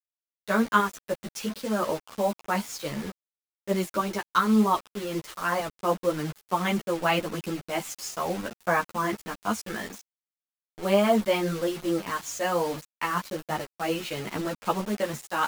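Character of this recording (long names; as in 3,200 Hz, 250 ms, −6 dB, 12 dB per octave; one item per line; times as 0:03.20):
tremolo saw up 2.5 Hz, depth 50%
a quantiser's noise floor 6 bits, dither none
a shimmering, thickened sound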